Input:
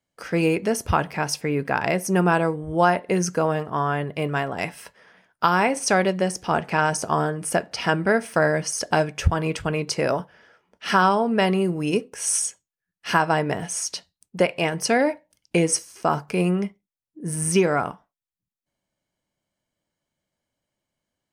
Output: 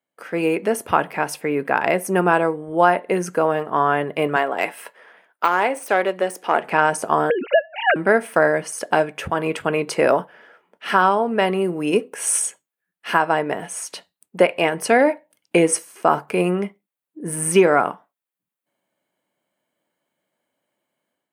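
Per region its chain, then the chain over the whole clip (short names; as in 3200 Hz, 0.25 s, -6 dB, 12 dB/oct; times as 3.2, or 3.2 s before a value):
4.36–6.64 self-modulated delay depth 0.08 ms + de-esser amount 45% + HPF 300 Hz
7.3–7.96 sine-wave speech + three-band squash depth 100%
whole clip: HPF 270 Hz 12 dB/oct; bell 5500 Hz -13 dB 0.93 oct; AGC gain up to 8 dB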